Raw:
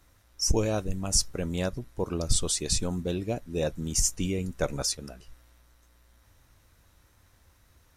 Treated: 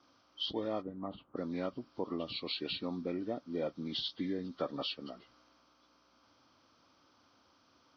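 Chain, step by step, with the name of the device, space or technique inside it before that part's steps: 0.8–1.36 LPF 2100 Hz -> 1300 Hz 12 dB/oct; hearing aid with frequency lowering (nonlinear frequency compression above 1000 Hz 1.5:1; compressor 2:1, threshold -35 dBFS, peak gain reduction 10 dB; speaker cabinet 270–5400 Hz, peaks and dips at 270 Hz +8 dB, 430 Hz -3 dB, 1200 Hz +5 dB, 1800 Hz -8 dB, 2500 Hz -5 dB, 3600 Hz -4 dB)

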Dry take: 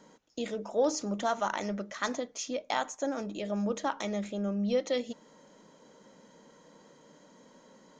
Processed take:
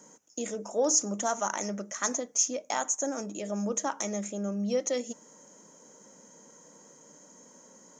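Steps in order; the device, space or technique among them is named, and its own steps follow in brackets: budget condenser microphone (HPF 120 Hz 12 dB/oct; resonant high shelf 5100 Hz +8.5 dB, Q 3)

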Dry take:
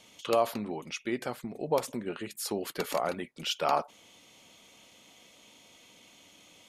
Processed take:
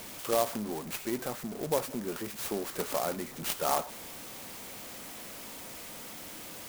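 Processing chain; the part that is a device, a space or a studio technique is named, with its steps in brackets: early CD player with a faulty converter (zero-crossing step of -36.5 dBFS; clock jitter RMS 0.086 ms); gain -2.5 dB

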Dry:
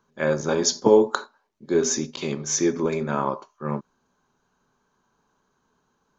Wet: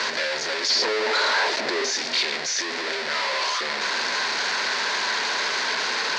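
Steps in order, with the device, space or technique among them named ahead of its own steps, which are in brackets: home computer beeper (infinite clipping; speaker cabinet 780–5200 Hz, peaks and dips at 810 Hz -6 dB, 1200 Hz -9 dB, 1900 Hz +4 dB, 3000 Hz -4 dB, 4500 Hz +6 dB); 0.69–1.92 bell 460 Hz +7 dB 2.6 oct; gain +5.5 dB

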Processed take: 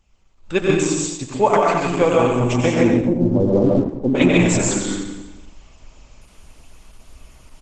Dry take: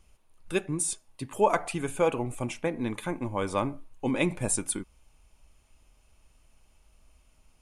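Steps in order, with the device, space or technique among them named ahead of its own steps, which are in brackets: feedback echo 91 ms, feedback 52%, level -7 dB; 2.82–4.15 inverse Chebyshev low-pass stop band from 1500 Hz, stop band 50 dB; speakerphone in a meeting room (reverb RT60 0.70 s, pre-delay 0.118 s, DRR -0.5 dB; AGC gain up to 13.5 dB; Opus 12 kbps 48000 Hz)

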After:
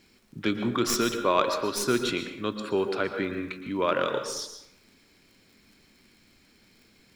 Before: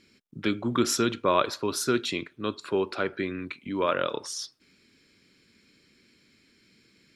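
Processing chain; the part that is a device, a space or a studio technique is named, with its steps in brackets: 0.71–1.77 low shelf 130 Hz -9.5 dB; record under a worn stylus (tracing distortion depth 0.028 ms; crackle 65/s -48 dBFS; pink noise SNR 37 dB); plate-style reverb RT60 0.79 s, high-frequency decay 0.6×, pre-delay 0.105 s, DRR 7 dB

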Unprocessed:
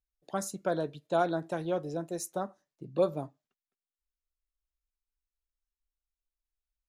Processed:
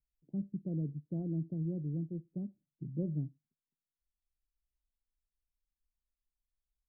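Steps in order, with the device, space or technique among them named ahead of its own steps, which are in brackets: the neighbour's flat through the wall (LPF 270 Hz 24 dB/oct; bell 150 Hz +5.5 dB 0.47 oct); gain +1.5 dB

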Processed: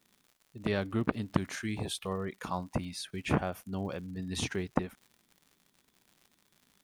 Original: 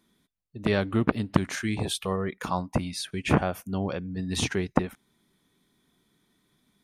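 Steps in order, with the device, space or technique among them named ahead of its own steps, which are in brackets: vinyl LP (crackle 120/s -41 dBFS; white noise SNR 44 dB); gain -6.5 dB

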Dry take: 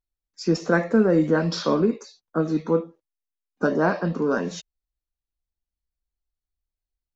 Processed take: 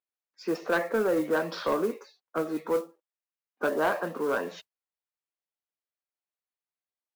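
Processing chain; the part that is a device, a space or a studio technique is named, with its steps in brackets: carbon microphone (BPF 460–2700 Hz; soft clip -18 dBFS, distortion -15 dB; modulation noise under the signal 24 dB)

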